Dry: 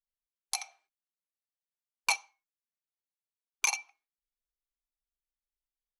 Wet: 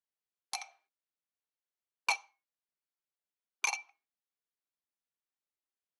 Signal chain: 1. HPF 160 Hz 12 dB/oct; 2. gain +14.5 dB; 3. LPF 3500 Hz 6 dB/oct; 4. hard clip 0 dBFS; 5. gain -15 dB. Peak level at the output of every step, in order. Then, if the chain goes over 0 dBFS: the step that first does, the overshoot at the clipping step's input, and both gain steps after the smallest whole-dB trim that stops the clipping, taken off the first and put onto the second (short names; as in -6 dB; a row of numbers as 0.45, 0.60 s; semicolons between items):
-16.5, -2.0, -4.5, -4.5, -19.5 dBFS; no overload